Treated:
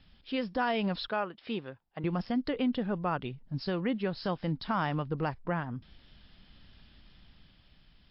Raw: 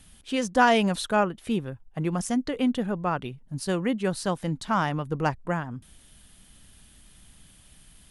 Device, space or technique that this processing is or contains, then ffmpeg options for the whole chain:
low-bitrate web radio: -filter_complex "[0:a]asettb=1/sr,asplit=3[s0][s1][s2];[s0]atrim=end=1.084[s3];[s1]atrim=start=1.08:end=2.04,asetpts=PTS-STARTPTS,afade=t=in:d=0.004:c=qsin,afade=t=out:st=0.956:d=0.004:c=qsin,highpass=f=500:p=1[s4];[s2]atrim=start=2.036[s5];[s3][s4]acrossfade=d=0.004:c1=hsin:c2=qsin[s6];[s6][s5]acrossfade=d=0.004:c1=qsin:c2=hsin,dynaudnorm=f=140:g=13:m=1.58,alimiter=limit=0.178:level=0:latency=1:release=213,volume=0.562" -ar 12000 -c:a libmp3lame -b:a 40k

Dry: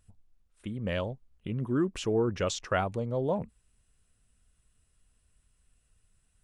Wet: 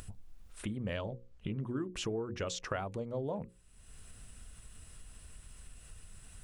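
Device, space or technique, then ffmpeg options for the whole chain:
upward and downward compression: -filter_complex "[0:a]acompressor=mode=upward:threshold=0.00891:ratio=2.5,acompressor=threshold=0.0141:ratio=8,bandreject=f=60:t=h:w=6,bandreject=f=120:t=h:w=6,bandreject=f=180:t=h:w=6,bandreject=f=240:t=h:w=6,bandreject=f=300:t=h:w=6,bandreject=f=360:t=h:w=6,bandreject=f=420:t=h:w=6,bandreject=f=480:t=h:w=6,bandreject=f=540:t=h:w=6,asettb=1/sr,asplit=3[s0][s1][s2];[s0]atrim=end=0.974[s3];[s1]atrim=start=0.97:end=1.68,asetpts=PTS-STARTPTS,afade=t=in:d=0.004:c=qsin,afade=t=out:st=0.706:d=0.004:c=qsin,lowpass=7500[s4];[s2]atrim=start=1.676[s5];[s3][s4]acrossfade=d=0.004:c1=hsin:c2=qsin[s6];[s6][s5]acrossfade=d=0.004:c1=qsin:c2=hsin,volume=1.58"

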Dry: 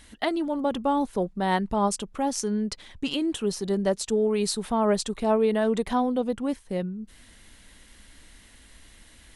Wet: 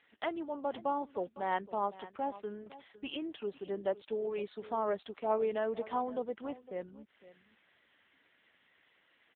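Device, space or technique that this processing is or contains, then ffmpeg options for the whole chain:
satellite phone: -af "highpass=390,lowpass=3400,aecho=1:1:507:0.141,volume=0.473" -ar 8000 -c:a libopencore_amrnb -b:a 6700

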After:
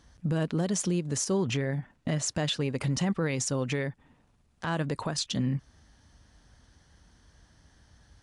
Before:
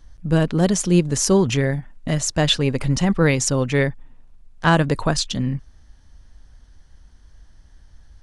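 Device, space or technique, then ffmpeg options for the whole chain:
podcast mastering chain: -filter_complex "[0:a]asettb=1/sr,asplit=3[s0][s1][s2];[s0]atrim=end=1.444[s3];[s1]atrim=start=1.44:end=2.35,asetpts=PTS-STARTPTS,afade=t=in:d=0.004:c=qsin,afade=t=out:st=0.906:d=0.004:c=qsin,highshelf=f=6800:g=-8.5[s4];[s2]atrim=start=2.346[s5];[s3][s4]acrossfade=d=0.004:c1=hsin:c2=qsin[s6];[s6][s5]acrossfade=d=0.004:c1=qsin:c2=hsin,highpass=93,acompressor=threshold=0.0562:ratio=2.5,alimiter=limit=0.1:level=0:latency=1:release=115" -ar 24000 -c:a libmp3lame -b:a 96k

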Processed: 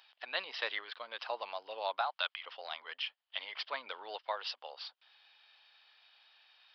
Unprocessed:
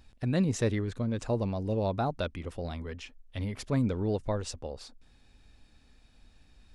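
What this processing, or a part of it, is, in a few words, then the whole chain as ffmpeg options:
musical greeting card: -filter_complex "[0:a]asettb=1/sr,asplit=3[s0][s1][s2];[s0]atrim=end=2.014[s3];[s1]atrim=start=2.01:end=2.46,asetpts=PTS-STARTPTS,afade=t=in:d=0.004:c=qsin,afade=t=out:st=0.446:d=0.004:c=qsin,highpass=780[s4];[s2]atrim=start=2.456[s5];[s3][s4]acrossfade=d=0.004:c1=hsin:c2=qsin[s6];[s6][s5]acrossfade=d=0.004:c1=qsin:c2=hsin,aresample=11025,aresample=44100,highpass=f=810:w=0.5412,highpass=f=810:w=1.3066,equalizer=f=3100:t=o:w=0.27:g=10,volume=1.5"

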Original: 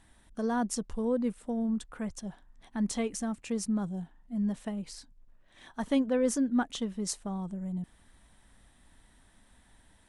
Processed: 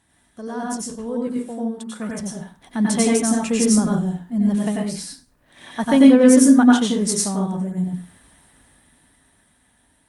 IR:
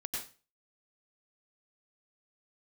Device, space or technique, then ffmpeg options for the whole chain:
far-field microphone of a smart speaker: -filter_complex "[0:a]asettb=1/sr,asplit=3[s0][s1][s2];[s0]atrim=end=1.274[s3];[s1]atrim=start=1.27:end=2,asetpts=PTS-STARTPTS,afade=t=in:d=0.004:c=qsin,afade=t=out:st=0.726:d=0.004:c=qsin,highpass=230[s4];[s2]atrim=start=1.996[s5];[s3][s4]acrossfade=d=0.004:c1=hsin:c2=qsin[s6];[s6][s5]acrossfade=d=0.004:c1=qsin:c2=hsin,highshelf=f=7900:g=5.5[s7];[1:a]atrim=start_sample=2205[s8];[s7][s8]afir=irnorm=-1:irlink=0,highpass=87,dynaudnorm=f=320:g=13:m=5.01,volume=1.19" -ar 48000 -c:a libopus -b:a 48k

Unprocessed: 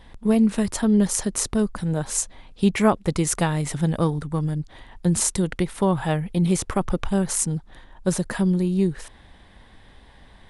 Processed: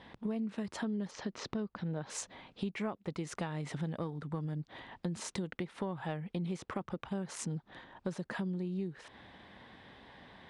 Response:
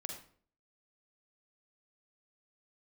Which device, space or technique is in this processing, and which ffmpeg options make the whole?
AM radio: -filter_complex "[0:a]asettb=1/sr,asplit=3[s0][s1][s2];[s0]atrim=end=1.114[s3];[s1]atrim=start=1.11:end=2.1,asetpts=PTS-STARTPTS,afade=t=in:d=0.004:c=qsin,afade=t=out:st=0.986:d=0.004:c=qsin,lowpass=f=5500:w=0.5412,lowpass=f=5500:w=1.3066[s4];[s2]atrim=start=2.096[s5];[s3][s4]acrossfade=d=0.004:c1=hsin:c2=qsin[s6];[s6][s5]acrossfade=d=0.004:c1=qsin:c2=hsin,highpass=140,lowpass=4100,acompressor=threshold=0.02:ratio=6,asoftclip=type=tanh:threshold=0.0944,volume=0.891"

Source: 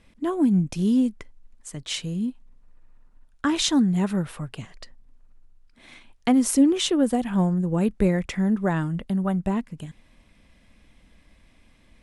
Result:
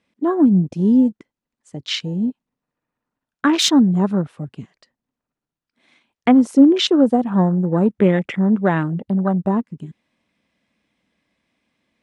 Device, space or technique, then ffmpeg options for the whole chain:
over-cleaned archive recording: -af "highpass=170,lowpass=7700,afwtdn=0.0178,volume=2.37"

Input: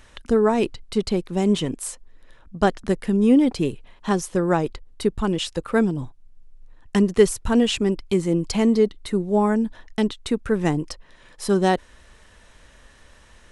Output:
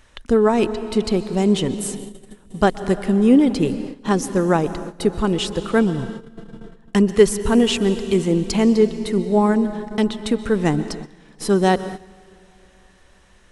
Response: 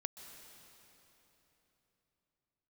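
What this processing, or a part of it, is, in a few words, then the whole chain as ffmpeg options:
keyed gated reverb: -filter_complex "[0:a]asplit=3[s0][s1][s2];[1:a]atrim=start_sample=2205[s3];[s1][s3]afir=irnorm=-1:irlink=0[s4];[s2]apad=whole_len=596063[s5];[s4][s5]sidechaingate=range=0.178:threshold=0.00794:ratio=16:detection=peak,volume=1.78[s6];[s0][s6]amix=inputs=2:normalize=0,volume=0.596"

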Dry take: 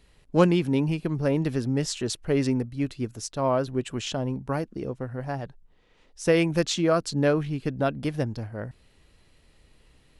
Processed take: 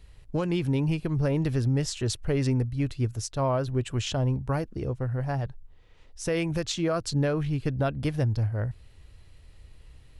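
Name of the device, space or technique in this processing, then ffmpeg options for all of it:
car stereo with a boomy subwoofer: -af "lowshelf=f=140:t=q:w=1.5:g=9,alimiter=limit=0.126:level=0:latency=1:release=163"

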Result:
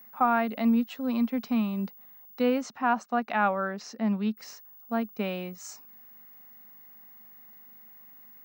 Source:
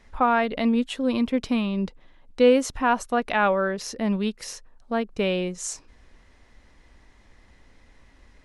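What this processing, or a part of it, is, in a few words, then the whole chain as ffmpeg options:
old television with a line whistle: -filter_complex "[0:a]highpass=f=180:w=0.5412,highpass=f=180:w=1.3066,equalizer=f=220:t=q:w=4:g=8,equalizer=f=330:t=q:w=4:g=-8,equalizer=f=510:t=q:w=4:g=-4,equalizer=f=770:t=q:w=4:g=6,equalizer=f=1300:t=q:w=4:g=5,equalizer=f=3300:t=q:w=4:g=-6,lowpass=f=6700:w=0.5412,lowpass=f=6700:w=1.3066,aeval=exprs='val(0)+0.0112*sin(2*PI*15625*n/s)':c=same,asettb=1/sr,asplit=3[s0][s1][s2];[s0]atrim=end=2.614[s3];[s1]atrim=start=2.61:end=4.37,asetpts=PTS-STARTPTS,afade=t=in:d=0.004:c=qsin,afade=t=out:st=1.756:d=0.004:c=qsin,lowpass=9300[s4];[s2]atrim=start=4.366[s5];[s3][s4]acrossfade=d=0.004:c1=hsin:c2=qsin[s6];[s6][s5]acrossfade=d=0.004:c1=qsin:c2=hsin,highshelf=f=9900:g=-3.5,volume=0.473"

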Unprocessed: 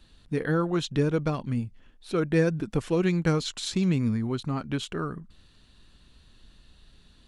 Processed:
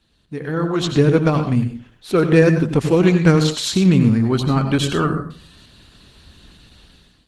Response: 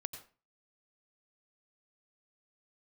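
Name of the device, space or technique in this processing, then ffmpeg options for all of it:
far-field microphone of a smart speaker: -filter_complex "[0:a]asplit=3[s0][s1][s2];[s0]afade=t=out:st=1.41:d=0.02[s3];[s1]adynamicequalizer=threshold=0.00562:dfrequency=710:dqfactor=3.3:tfrequency=710:tqfactor=3.3:attack=5:release=100:ratio=0.375:range=1.5:mode=cutabove:tftype=bell,afade=t=in:st=1.41:d=0.02,afade=t=out:st=2.73:d=0.02[s4];[s2]afade=t=in:st=2.73:d=0.02[s5];[s3][s4][s5]amix=inputs=3:normalize=0[s6];[1:a]atrim=start_sample=2205[s7];[s6][s7]afir=irnorm=-1:irlink=0,highpass=f=86:p=1,dynaudnorm=f=490:g=3:m=6.31" -ar 48000 -c:a libopus -b:a 16k

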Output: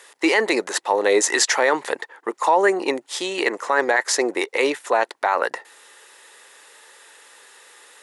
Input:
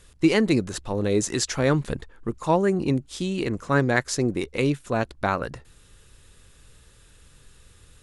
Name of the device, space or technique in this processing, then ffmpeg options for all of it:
laptop speaker: -af "highpass=f=410:w=0.5412,highpass=f=410:w=1.3066,equalizer=f=880:t=o:w=0.5:g=9.5,equalizer=f=1900:t=o:w=0.28:g=10,alimiter=limit=0.168:level=0:latency=1:release=28,volume=2.66"

